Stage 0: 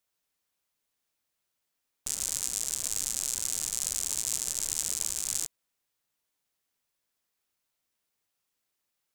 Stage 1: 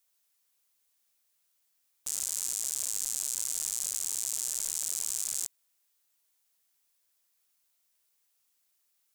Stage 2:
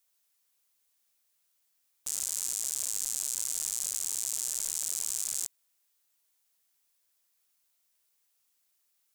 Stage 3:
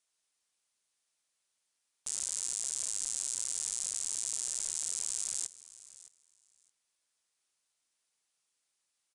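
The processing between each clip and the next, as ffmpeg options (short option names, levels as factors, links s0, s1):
-af "highshelf=f=4700:g=9.5,alimiter=limit=0.211:level=0:latency=1:release=12,lowshelf=f=280:g=-10"
-af anull
-af "aecho=1:1:616|1232:0.119|0.019,aresample=22050,aresample=44100,volume=0.794"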